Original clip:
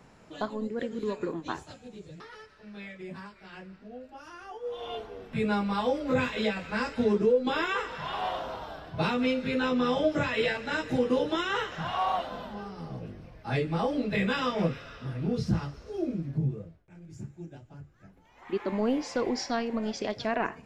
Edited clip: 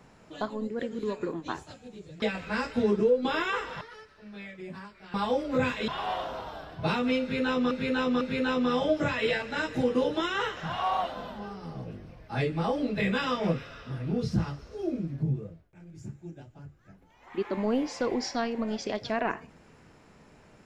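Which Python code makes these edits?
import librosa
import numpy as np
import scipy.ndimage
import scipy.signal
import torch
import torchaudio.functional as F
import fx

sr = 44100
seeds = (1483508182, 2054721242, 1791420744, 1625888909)

y = fx.edit(x, sr, fx.cut(start_s=3.55, length_s=2.15),
    fx.move(start_s=6.44, length_s=1.59, to_s=2.22),
    fx.repeat(start_s=9.36, length_s=0.5, count=3), tone=tone)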